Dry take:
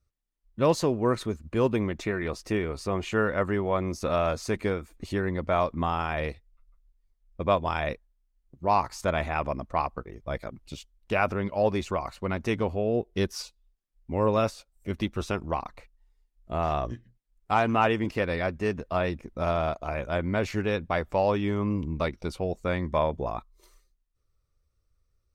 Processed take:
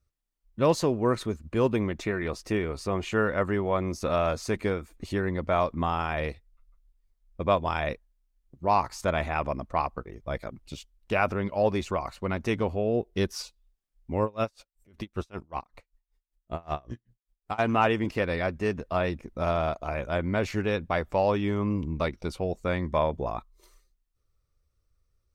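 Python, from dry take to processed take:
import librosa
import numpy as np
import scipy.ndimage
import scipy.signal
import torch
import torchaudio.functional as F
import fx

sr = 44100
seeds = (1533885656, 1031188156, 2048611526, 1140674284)

y = fx.tremolo_db(x, sr, hz=5.2, depth_db=30, at=(14.21, 17.58), fade=0.02)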